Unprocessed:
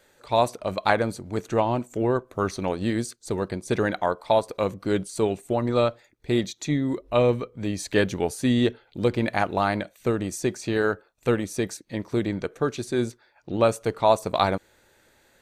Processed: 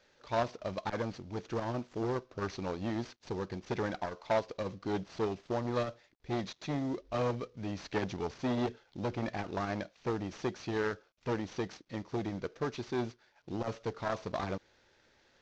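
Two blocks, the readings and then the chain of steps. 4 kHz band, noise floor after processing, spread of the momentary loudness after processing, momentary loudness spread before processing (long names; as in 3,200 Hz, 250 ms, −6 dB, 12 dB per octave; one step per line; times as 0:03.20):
−12.0 dB, −69 dBFS, 6 LU, 7 LU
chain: variable-slope delta modulation 32 kbit/s
saturating transformer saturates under 880 Hz
level −7 dB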